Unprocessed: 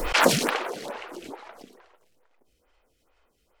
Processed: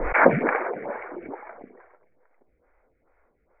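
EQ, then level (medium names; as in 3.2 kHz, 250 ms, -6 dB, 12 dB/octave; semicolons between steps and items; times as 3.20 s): rippled Chebyshev low-pass 2.3 kHz, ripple 3 dB; +4.5 dB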